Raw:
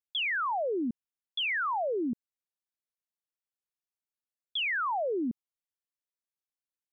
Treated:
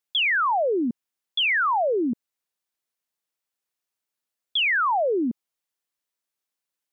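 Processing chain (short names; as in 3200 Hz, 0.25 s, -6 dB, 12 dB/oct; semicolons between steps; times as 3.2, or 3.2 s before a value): low shelf 130 Hz -10 dB; gain +8.5 dB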